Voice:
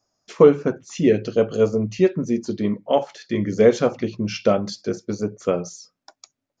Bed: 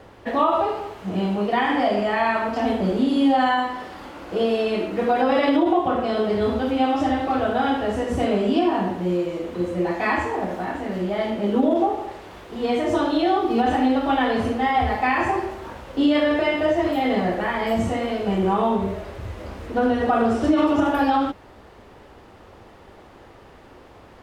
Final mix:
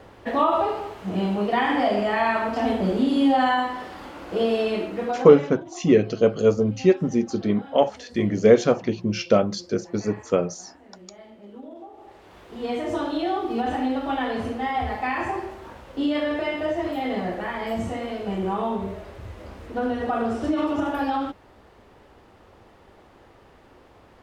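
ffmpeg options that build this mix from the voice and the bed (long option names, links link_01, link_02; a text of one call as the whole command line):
ffmpeg -i stem1.wav -i stem2.wav -filter_complex "[0:a]adelay=4850,volume=0dB[link_01];[1:a]volume=15.5dB,afade=type=out:start_time=4.64:duration=0.9:silence=0.0891251,afade=type=in:start_time=11.92:duration=0.57:silence=0.149624[link_02];[link_01][link_02]amix=inputs=2:normalize=0" out.wav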